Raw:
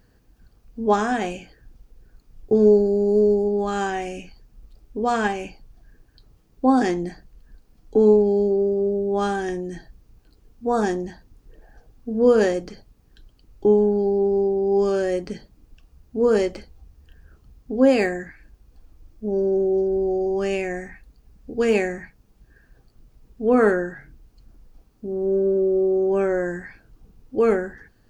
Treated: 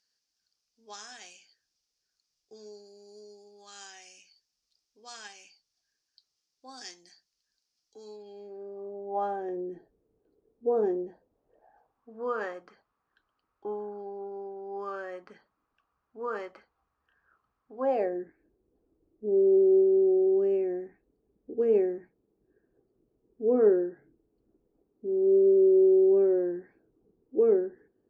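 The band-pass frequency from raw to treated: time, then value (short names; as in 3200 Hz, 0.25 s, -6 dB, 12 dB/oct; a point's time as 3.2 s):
band-pass, Q 3.4
8.03 s 5300 Hz
8.67 s 1400 Hz
9.61 s 430 Hz
11.02 s 430 Hz
12.15 s 1200 Hz
17.74 s 1200 Hz
18.18 s 380 Hz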